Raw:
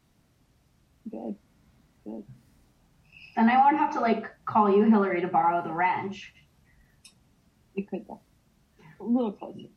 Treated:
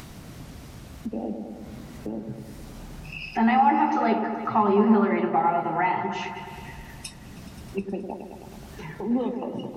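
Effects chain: upward compressor, threshold -24 dBFS; delay with an opening low-pass 106 ms, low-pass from 750 Hz, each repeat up 1 oct, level -6 dB

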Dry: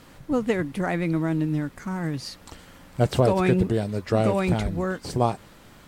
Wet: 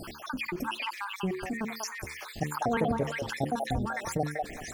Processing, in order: random holes in the spectrogram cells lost 66%; hum notches 60/120/180/240/300/360/420 Hz; tape speed +24%; repeats whose band climbs or falls 193 ms, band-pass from 850 Hz, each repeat 1.4 oct, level -2 dB; level flattener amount 50%; trim -6.5 dB

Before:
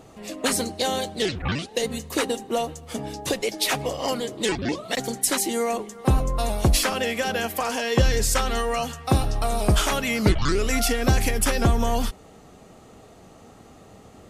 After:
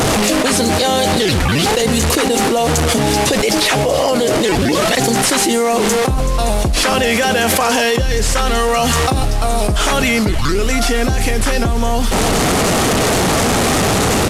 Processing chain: one-bit delta coder 64 kbps, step -30.5 dBFS; 3.75–4.60 s: peaking EQ 570 Hz +5.5 dB 0.77 oct; delay 326 ms -20.5 dB; level flattener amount 100%

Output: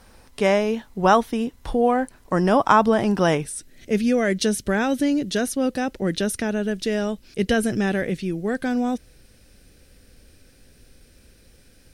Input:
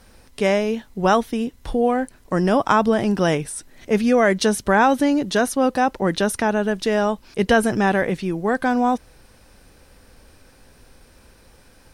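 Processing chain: peaking EQ 960 Hz +3.5 dB 1 oct, from 3.45 s -14.5 dB; trim -1 dB

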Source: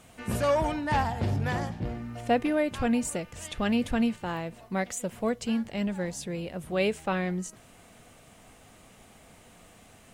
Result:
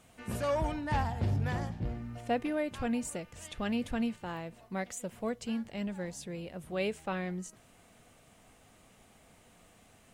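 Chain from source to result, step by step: 0.52–2.18 s: bass shelf 130 Hz +8 dB; trim -6.5 dB

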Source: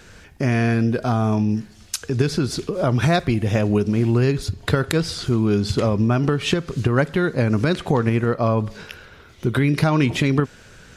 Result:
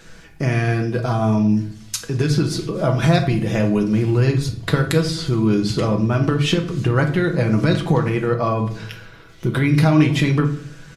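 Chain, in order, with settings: comb 6.1 ms, depth 53%; on a send: reverberation RT60 0.55 s, pre-delay 5 ms, DRR 5 dB; on the sum: trim -1 dB

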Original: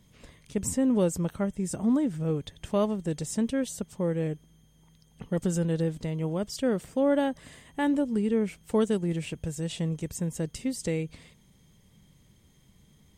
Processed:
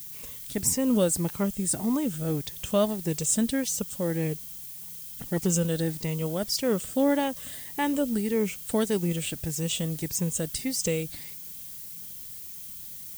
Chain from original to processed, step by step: drifting ripple filter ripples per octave 0.78, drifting +1.7 Hz, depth 7 dB; treble shelf 3 kHz +11 dB; added noise violet -41 dBFS

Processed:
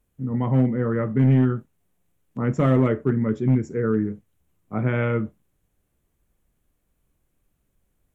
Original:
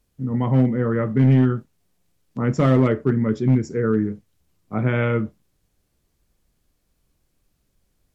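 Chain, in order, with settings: peaking EQ 4.8 kHz -12.5 dB 0.7 oct; trim -2 dB

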